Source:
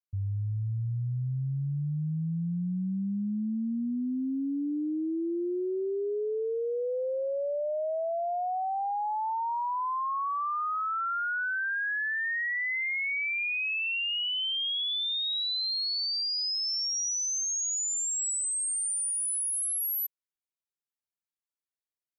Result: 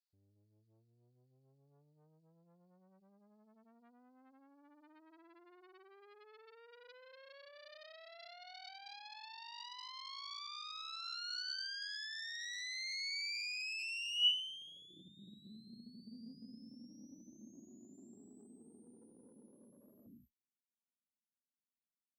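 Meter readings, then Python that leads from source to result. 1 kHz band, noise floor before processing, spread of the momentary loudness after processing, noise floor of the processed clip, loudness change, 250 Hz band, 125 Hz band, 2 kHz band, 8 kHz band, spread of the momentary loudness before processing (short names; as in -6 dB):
-24.0 dB, under -85 dBFS, 20 LU, under -85 dBFS, -11.0 dB, -24.5 dB, under -30 dB, -16.0 dB, -26.5 dB, 4 LU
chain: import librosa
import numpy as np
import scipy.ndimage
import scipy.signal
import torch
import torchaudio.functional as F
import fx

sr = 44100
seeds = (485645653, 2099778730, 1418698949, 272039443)

y = fx.rev_gated(x, sr, seeds[0], gate_ms=250, shape='rising', drr_db=7.0)
y = fx.tube_stage(y, sr, drive_db=33.0, bias=0.45)
y = fx.filter_sweep_bandpass(y, sr, from_hz=4500.0, to_hz=230.0, start_s=14.13, end_s=15.06, q=5.8)
y = F.gain(torch.from_numpy(y), 9.0).numpy()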